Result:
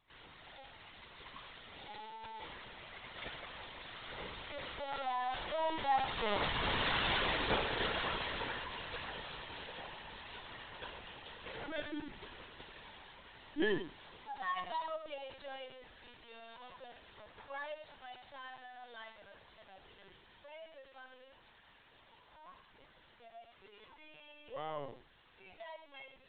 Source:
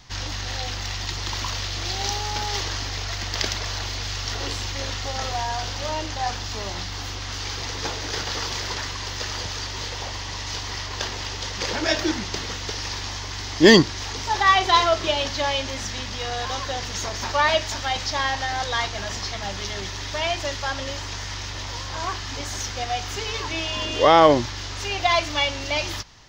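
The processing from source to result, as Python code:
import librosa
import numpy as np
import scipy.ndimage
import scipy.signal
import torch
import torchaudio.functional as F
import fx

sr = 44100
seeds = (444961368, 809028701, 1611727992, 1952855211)

p1 = fx.doppler_pass(x, sr, speed_mps=18, closest_m=7.9, pass_at_s=6.85)
p2 = scipy.signal.sosfilt(scipy.signal.butter(2, 220.0, 'highpass', fs=sr, output='sos'), p1)
p3 = fx.air_absorb(p2, sr, metres=93.0)
p4 = p3 + fx.echo_feedback(p3, sr, ms=91, feedback_pct=16, wet_db=-9.5, dry=0)
p5 = fx.lpc_vocoder(p4, sr, seeds[0], excitation='pitch_kept', order=16)
y = p5 * 10.0 ** (3.5 / 20.0)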